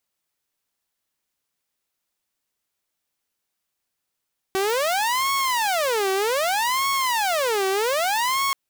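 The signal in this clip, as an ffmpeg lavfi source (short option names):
-f lavfi -i "aevalsrc='0.133*(2*mod((741*t-359/(2*PI*0.64)*sin(2*PI*0.64*t)),1)-1)':d=3.98:s=44100"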